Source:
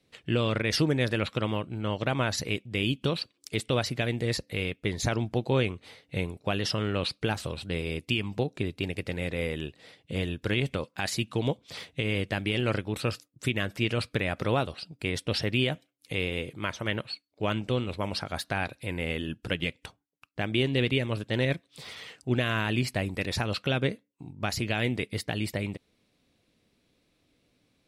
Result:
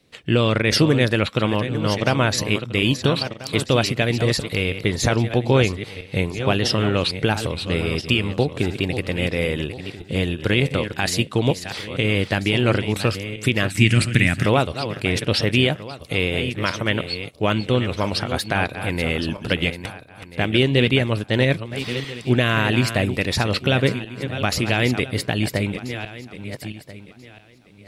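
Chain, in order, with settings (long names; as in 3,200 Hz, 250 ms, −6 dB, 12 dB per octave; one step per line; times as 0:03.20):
feedback delay that plays each chunk backwards 668 ms, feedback 42%, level −10 dB
0:13.70–0:14.46: octave-band graphic EQ 125/250/500/1,000/2,000/4,000/8,000 Hz +6/+6/−11/−8/+7/−4/+12 dB
level +8.5 dB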